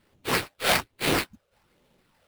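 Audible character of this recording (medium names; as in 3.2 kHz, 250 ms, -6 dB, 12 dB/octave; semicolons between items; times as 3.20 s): phasing stages 8, 1.2 Hz, lowest notch 260–1800 Hz; aliases and images of a low sample rate 6.6 kHz, jitter 20%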